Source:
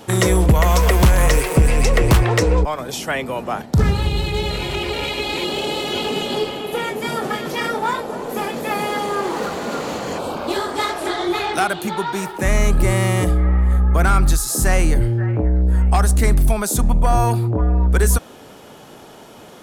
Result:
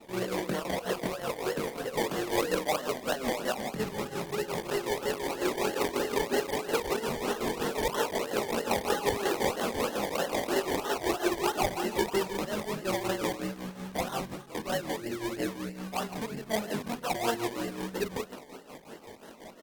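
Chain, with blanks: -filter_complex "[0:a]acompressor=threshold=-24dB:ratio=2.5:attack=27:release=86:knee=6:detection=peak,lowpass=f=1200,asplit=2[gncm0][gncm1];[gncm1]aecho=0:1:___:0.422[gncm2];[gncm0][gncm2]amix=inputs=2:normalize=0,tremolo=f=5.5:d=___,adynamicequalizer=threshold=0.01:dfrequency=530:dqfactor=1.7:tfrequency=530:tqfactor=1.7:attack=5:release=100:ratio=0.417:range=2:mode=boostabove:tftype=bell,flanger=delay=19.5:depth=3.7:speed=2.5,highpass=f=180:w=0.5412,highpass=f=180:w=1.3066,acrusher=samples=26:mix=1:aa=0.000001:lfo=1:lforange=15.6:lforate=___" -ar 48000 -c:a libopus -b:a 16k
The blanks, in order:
160, 0.76, 3.1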